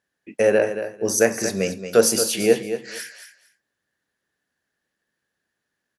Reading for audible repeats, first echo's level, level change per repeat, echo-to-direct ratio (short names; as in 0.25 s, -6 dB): 2, -10.0 dB, -15.5 dB, -10.0 dB